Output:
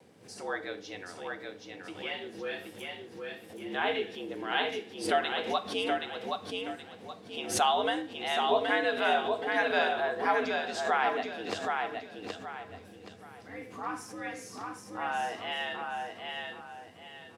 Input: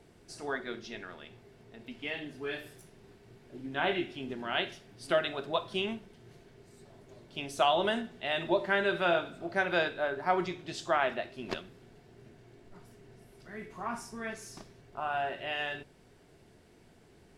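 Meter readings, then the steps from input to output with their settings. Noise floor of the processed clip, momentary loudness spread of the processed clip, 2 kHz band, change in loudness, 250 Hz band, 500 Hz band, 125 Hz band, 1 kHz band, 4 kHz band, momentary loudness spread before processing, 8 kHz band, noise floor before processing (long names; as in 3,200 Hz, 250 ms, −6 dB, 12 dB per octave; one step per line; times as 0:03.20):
−51 dBFS, 17 LU, +2.0 dB, +0.5 dB, 0.0 dB, +1.0 dB, −6.0 dB, +4.0 dB, +2.5 dB, 18 LU, +8.0 dB, −60 dBFS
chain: frequency shifter +80 Hz
pitch vibrato 1.5 Hz 31 cents
on a send: repeating echo 774 ms, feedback 32%, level −4 dB
on the sum: background raised ahead of every attack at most 110 dB per second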